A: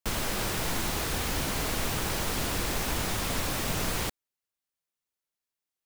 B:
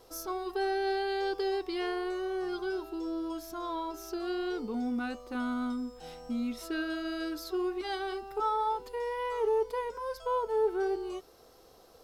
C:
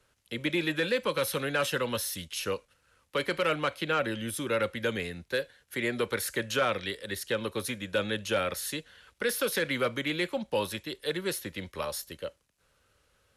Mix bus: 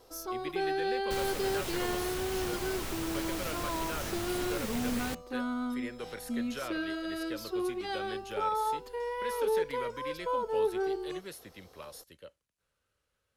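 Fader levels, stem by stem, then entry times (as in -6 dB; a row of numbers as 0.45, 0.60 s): -8.0, -1.0, -12.5 dB; 1.05, 0.00, 0.00 s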